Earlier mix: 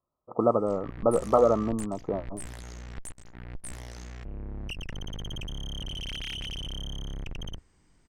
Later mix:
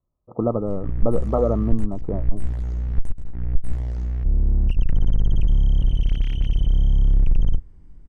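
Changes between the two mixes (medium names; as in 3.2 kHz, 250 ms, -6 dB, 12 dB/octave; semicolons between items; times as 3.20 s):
speech -4.5 dB; master: add tilt EQ -4.5 dB/octave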